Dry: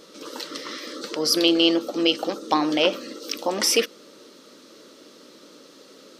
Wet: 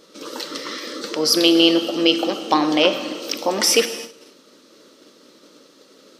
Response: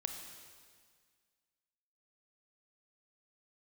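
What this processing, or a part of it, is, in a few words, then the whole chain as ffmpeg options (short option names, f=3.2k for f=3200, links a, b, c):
keyed gated reverb: -filter_complex "[0:a]asplit=3[a][b][c];[1:a]atrim=start_sample=2205[d];[b][d]afir=irnorm=-1:irlink=0[e];[c]apad=whole_len=273125[f];[e][f]sidechaingate=range=-33dB:threshold=-45dB:ratio=16:detection=peak,volume=3dB[g];[a][g]amix=inputs=2:normalize=0,volume=-3dB"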